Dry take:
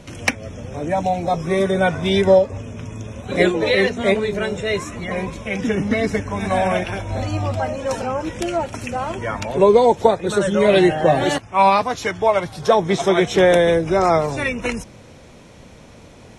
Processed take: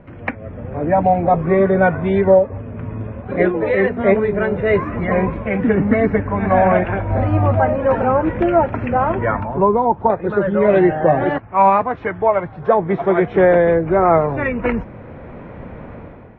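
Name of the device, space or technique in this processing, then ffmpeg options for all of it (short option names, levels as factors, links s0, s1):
action camera in a waterproof case: -filter_complex "[0:a]asettb=1/sr,asplit=3[s0][s1][s2];[s0]atrim=end=9.404[s3];[s1]atrim=start=9.4:end=10.1,asetpts=PTS-STARTPTS,afade=t=in:d=0.004:c=qsin,afade=t=out:st=0.696:d=0.004:c=qsin,equalizer=f=500:t=o:w=1:g=-10,equalizer=f=1000:t=o:w=1:g=6,equalizer=f=2000:t=o:w=1:g=-11,equalizer=f=4000:t=o:w=1:g=-5,equalizer=f=8000:t=o:w=1:g=-4[s4];[s2]atrim=start=10.096[s5];[s3][s4]acrossfade=d=0.004:c1=hsin:c2=qsin[s6];[s6][s5]acrossfade=d=0.004:c1=qsin:c2=hsin,lowpass=f=1900:w=0.5412,lowpass=f=1900:w=1.3066,dynaudnorm=f=120:g=7:m=3.98,volume=0.841" -ar 22050 -c:a aac -b:a 96k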